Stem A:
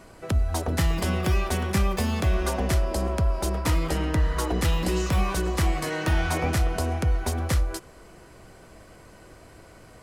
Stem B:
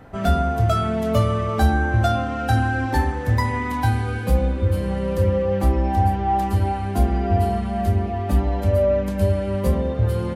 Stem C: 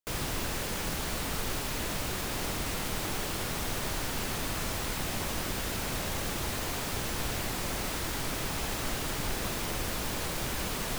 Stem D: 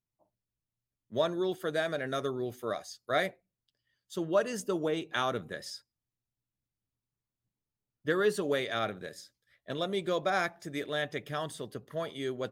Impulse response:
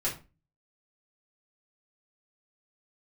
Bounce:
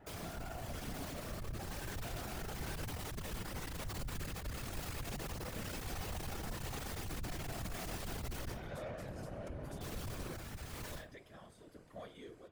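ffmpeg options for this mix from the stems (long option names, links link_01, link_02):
-filter_complex "[0:a]adelay=2450,volume=-11dB[link_01];[1:a]alimiter=limit=-18.5dB:level=0:latency=1,asoftclip=type=tanh:threshold=-26dB,volume=-13dB,asplit=2[link_02][link_03];[link_03]volume=-3.5dB[link_04];[2:a]dynaudnorm=framelen=290:gausssize=13:maxgain=8dB,volume=-5.5dB,asplit=3[link_05][link_06][link_07];[link_05]atrim=end=8.52,asetpts=PTS-STARTPTS,afade=type=out:start_time=8.516:duration=0.004:curve=hsin[link_08];[link_06]atrim=start=8.52:end=9.81,asetpts=PTS-STARTPTS,volume=0[link_09];[link_07]atrim=start=9.81,asetpts=PTS-STARTPTS,afade=type=in:duration=0.004:curve=hsin[link_10];[link_08][link_09][link_10]concat=n=3:v=0:a=1,asplit=2[link_11][link_12];[link_12]volume=-10dB[link_13];[3:a]alimiter=level_in=3.5dB:limit=-24dB:level=0:latency=1,volume=-3.5dB,volume=-7.5dB,asplit=2[link_14][link_15];[link_15]volume=-13.5dB[link_16];[link_11][link_14]amix=inputs=2:normalize=0,tremolo=f=1:d=0.92,acompressor=threshold=-37dB:ratio=6,volume=0dB[link_17];[link_01][link_02]amix=inputs=2:normalize=0,alimiter=level_in=8dB:limit=-24dB:level=0:latency=1:release=73,volume=-8dB,volume=0dB[link_18];[4:a]atrim=start_sample=2205[link_19];[link_04][link_13][link_16]amix=inputs=3:normalize=0[link_20];[link_20][link_19]afir=irnorm=-1:irlink=0[link_21];[link_17][link_18][link_21]amix=inputs=3:normalize=0,asoftclip=type=tanh:threshold=-32.5dB,afftfilt=real='hypot(re,im)*cos(2*PI*random(0))':imag='hypot(re,im)*sin(2*PI*random(1))':win_size=512:overlap=0.75"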